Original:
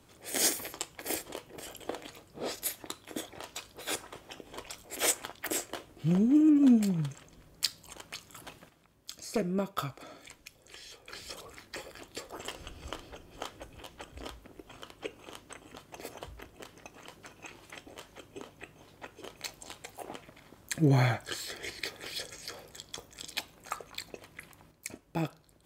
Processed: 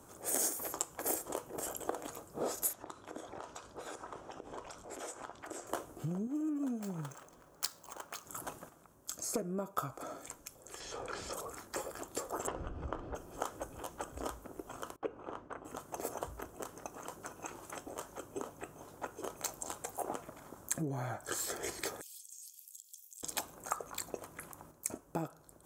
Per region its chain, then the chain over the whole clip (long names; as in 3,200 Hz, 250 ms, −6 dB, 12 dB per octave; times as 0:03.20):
0:02.73–0:05.67: low-pass filter 5,100 Hz + downward compressor, threshold −45 dBFS
0:06.27–0:08.26: running median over 5 samples + low-shelf EQ 340 Hz −11.5 dB
0:10.80–0:11.33: low-pass filter 4,800 Hz + envelope flattener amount 70%
0:12.47–0:13.15: low-pass filter 2,500 Hz + low-shelf EQ 280 Hz +8.5 dB
0:14.96–0:15.65: low-pass filter 2,100 Hz + noise gate with hold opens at −45 dBFS, closes at −52 dBFS
0:22.01–0:23.23: Butterworth high-pass 2,500 Hz 96 dB per octave + first difference + downward compressor 5 to 1, threshold −53 dBFS
whole clip: flat-topped bell 3,000 Hz −13.5 dB; downward compressor 10 to 1, threshold −37 dBFS; low-shelf EQ 270 Hz −8 dB; level +7 dB